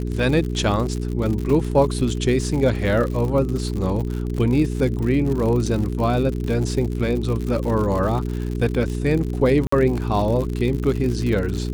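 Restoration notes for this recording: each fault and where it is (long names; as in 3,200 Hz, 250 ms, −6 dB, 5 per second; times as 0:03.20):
surface crackle 94 per second −26 dBFS
mains hum 60 Hz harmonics 7 −25 dBFS
0:01.50: drop-out 2.1 ms
0:09.67–0:09.72: drop-out 54 ms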